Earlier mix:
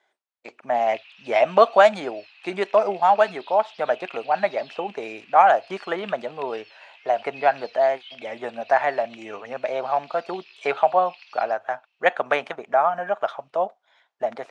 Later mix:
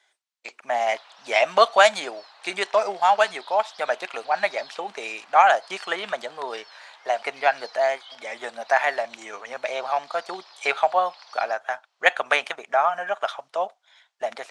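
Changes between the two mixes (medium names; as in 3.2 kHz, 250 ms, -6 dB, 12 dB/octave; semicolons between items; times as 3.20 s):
background: remove resonant high-pass 2.6 kHz, resonance Q 10; master: add tilt EQ +4.5 dB/octave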